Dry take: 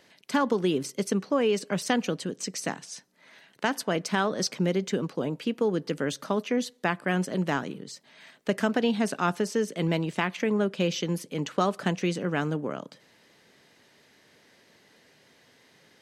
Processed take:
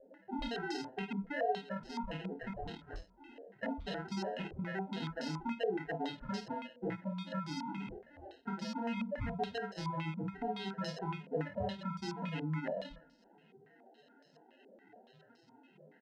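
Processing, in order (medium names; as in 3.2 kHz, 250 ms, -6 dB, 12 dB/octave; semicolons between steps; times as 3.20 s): 1.74–2.88 s: level held to a coarse grid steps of 20 dB; 8.93–10.26 s: hum notches 60/120/180/240/300 Hz; loudest bins only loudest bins 2; sample-and-hold 38×; peak limiter -29 dBFS, peak gain reduction 9 dB; compression 6:1, threshold -47 dBFS, peak gain reduction 14.5 dB; bass shelf 72 Hz +11 dB; early reflections 26 ms -5 dB, 51 ms -7 dB; on a send at -23 dB: reverberation RT60 0.80 s, pre-delay 48 ms; on the sum: step-sequenced low-pass 7.1 Hz 530–5100 Hz; trim +5.5 dB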